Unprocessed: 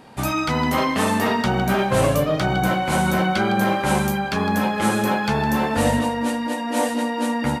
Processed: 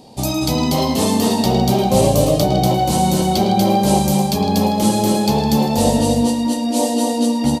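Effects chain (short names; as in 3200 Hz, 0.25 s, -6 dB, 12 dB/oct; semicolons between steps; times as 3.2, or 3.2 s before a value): EQ curve 780 Hz 0 dB, 1500 Hz -21 dB, 4500 Hz +6 dB, 9800 Hz +2 dB; on a send: tapped delay 0.108/0.239 s -11.5/-3.5 dB; on the sum: gain +3.5 dB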